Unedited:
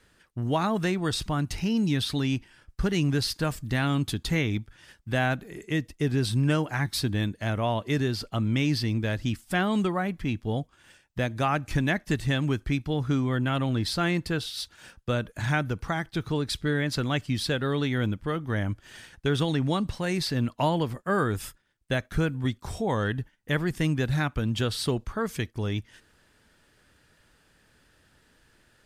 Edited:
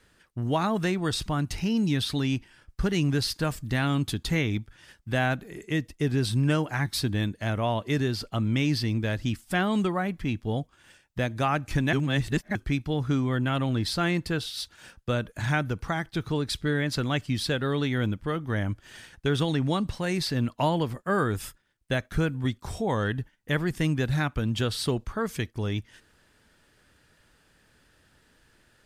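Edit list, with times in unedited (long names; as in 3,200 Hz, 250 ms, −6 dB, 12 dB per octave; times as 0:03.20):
0:11.93–0:12.55: reverse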